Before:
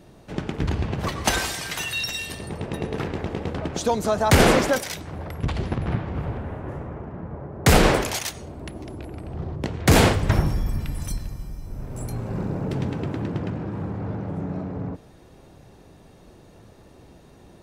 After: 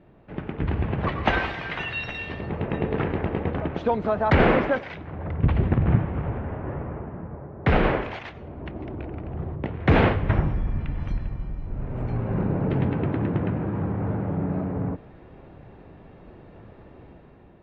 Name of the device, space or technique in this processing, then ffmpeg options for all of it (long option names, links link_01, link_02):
action camera in a waterproof case: -filter_complex "[0:a]asettb=1/sr,asplit=3[link_01][link_02][link_03];[link_01]atrim=end=5.244[link_04];[link_02]atrim=start=5.24:end=6.06,asetpts=PTS-STARTPTS,afade=type=in:duration=0.004:curve=qsin,afade=type=out:start_time=0.816:duration=0.004:curve=qsin,equalizer=frequency=98:width=0.32:gain=6[link_05];[link_03]atrim=start=6.056[link_06];[link_04][link_05]acrossfade=duration=0.004:curve1=hsin:curve2=qsin[link_07];[link_07][link_06]acrossfade=duration=0.004:curve1=qsin:curve2=hsin,lowpass=frequency=2600:width=0.5412,lowpass=frequency=2600:width=1.3066,dynaudnorm=framelen=200:gausssize=7:maxgain=7.5dB,volume=-4.5dB" -ar 44100 -c:a aac -b:a 48k